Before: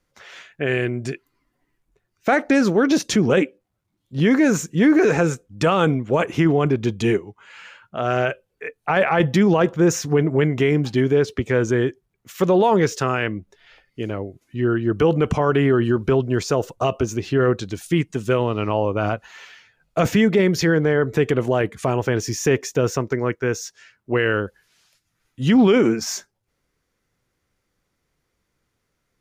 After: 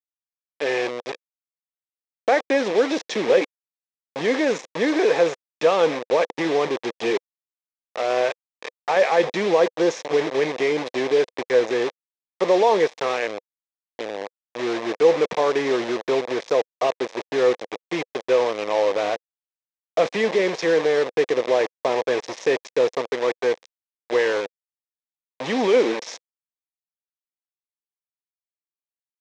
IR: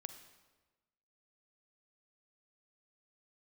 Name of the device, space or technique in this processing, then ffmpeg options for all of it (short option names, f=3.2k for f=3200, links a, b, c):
hand-held game console: -af "acrusher=bits=3:mix=0:aa=0.000001,highpass=470,equalizer=f=500:t=q:w=4:g=7,equalizer=f=1.4k:t=q:w=4:g=-10,equalizer=f=2.9k:t=q:w=4:g=-6,equalizer=f=4.5k:t=q:w=4:g=-7,lowpass=f=5k:w=0.5412,lowpass=f=5k:w=1.3066"